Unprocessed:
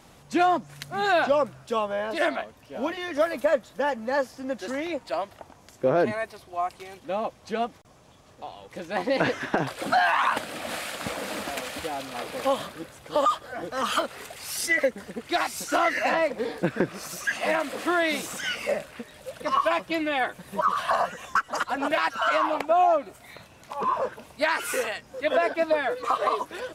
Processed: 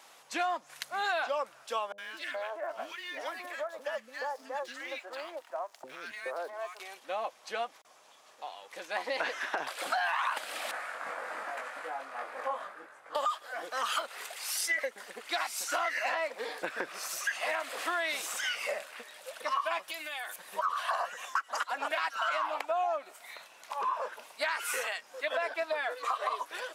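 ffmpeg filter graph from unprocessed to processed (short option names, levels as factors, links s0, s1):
-filter_complex "[0:a]asettb=1/sr,asplit=3[s0][s1][s2];[s0]atrim=end=1.924[s3];[s1]atrim=start=1.92:end=6.79,asetpts=PTS-STARTPTS,afade=t=in:d=0.004:c=qsin,afade=t=out:st=4.866:d=0.004:c=qsin,acrossover=split=1300|4000[s4][s5][s6];[s4]acompressor=threshold=0.0447:ratio=4[s7];[s5]acompressor=threshold=0.0126:ratio=4[s8];[s6]acompressor=threshold=0.00158:ratio=4[s9];[s7][s8][s9]amix=inputs=3:normalize=0,aeval=exprs='sgn(val(0))*max(abs(val(0))-0.00168,0)':c=same,acrossover=split=340|1400[s10][s11][s12];[s12]adelay=60[s13];[s11]adelay=420[s14];[s10][s14][s13]amix=inputs=3:normalize=0,atrim=end_sample=214767[s15];[s2]atrim=start=6.786[s16];[s3][s15]acrossfade=d=0.004:c1=hsin:c2=qsin[s17];[s17][s16]acrossfade=d=0.004:c1=qsin:c2=hsin,asettb=1/sr,asplit=3[s18][s19][s20];[s18]atrim=end=10.714[s21];[s19]atrim=start=10.71:end=13.15,asetpts=PTS-STARTPTS,afade=t=in:d=0.004:c=qsin,afade=t=out:st=2.436:d=0.004:c=qsin,lowpass=11000,highshelf=f=2300:t=q:w=1.5:g=-12,flanger=delay=20:depth=2.8:speed=1.2[s22];[s20]atrim=start=13.146[s23];[s21][s22]acrossfade=d=0.004:c1=hsin:c2=qsin[s24];[s24][s23]acrossfade=d=0.004:c1=qsin:c2=hsin,asettb=1/sr,asplit=3[s25][s26][s27];[s25]atrim=end=19.884[s28];[s26]atrim=start=19.88:end=20.36,asetpts=PTS-STARTPTS,afade=t=in:d=0.004:c=qsin,afade=t=out:st=0.476:d=0.004:c=qsin,highpass=f=130:t=q:w=1.6,aemphasis=mode=production:type=riaa,acompressor=threshold=0.0224:ratio=8:attack=3.2:release=140:knee=1:detection=peak[s29];[s27]atrim=start=20.356[s30];[s28][s29]acrossfade=d=0.004:c1=hsin:c2=qsin[s31];[s31][s30]acrossfade=d=0.004:c1=qsin:c2=hsin,highpass=760,acompressor=threshold=0.0282:ratio=2.5"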